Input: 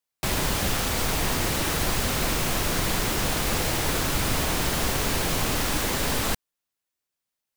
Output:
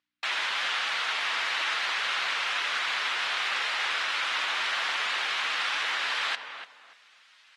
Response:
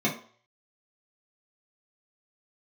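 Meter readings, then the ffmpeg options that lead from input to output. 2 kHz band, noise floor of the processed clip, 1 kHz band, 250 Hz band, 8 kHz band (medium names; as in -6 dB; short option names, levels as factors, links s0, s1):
+3.5 dB, -59 dBFS, -1.5 dB, under -25 dB, -14.5 dB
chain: -filter_complex "[0:a]areverse,acompressor=mode=upward:threshold=0.0447:ratio=2.5,areverse,aeval=exprs='val(0)+0.00158*(sin(2*PI*60*n/s)+sin(2*PI*2*60*n/s)/2+sin(2*PI*3*60*n/s)/3+sin(2*PI*4*60*n/s)/4+sin(2*PI*5*60*n/s)/5)':c=same,asuperpass=centerf=2200:order=4:qfactor=0.84,asplit=2[s0][s1];[s1]adelay=292,lowpass=f=1700:p=1,volume=0.447,asplit=2[s2][s3];[s3]adelay=292,lowpass=f=1700:p=1,volume=0.27,asplit=2[s4][s5];[s5]adelay=292,lowpass=f=1700:p=1,volume=0.27[s6];[s0][s2][s4][s6]amix=inputs=4:normalize=0,volume=1.26" -ar 48000 -c:a aac -b:a 32k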